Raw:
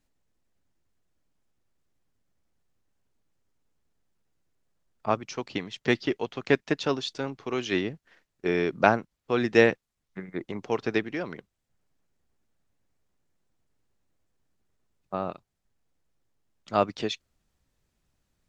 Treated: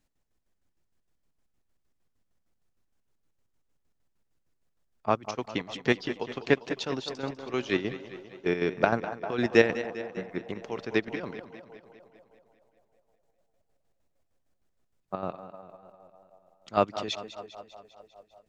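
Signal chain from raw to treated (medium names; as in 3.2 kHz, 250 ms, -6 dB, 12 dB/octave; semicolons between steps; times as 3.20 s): band-passed feedback delay 197 ms, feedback 75%, band-pass 650 Hz, level -13.5 dB; square tremolo 6.5 Hz, depth 60%, duty 50%; modulated delay 199 ms, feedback 60%, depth 63 cents, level -14 dB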